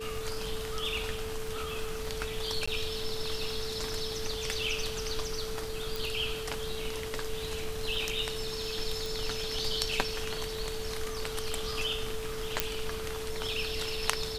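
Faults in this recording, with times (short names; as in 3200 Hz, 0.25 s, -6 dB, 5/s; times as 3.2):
crackle 12/s -38 dBFS
tone 440 Hz -37 dBFS
2.66–2.67 gap 15 ms
5.96 pop
9.06 pop
12.6 pop -6 dBFS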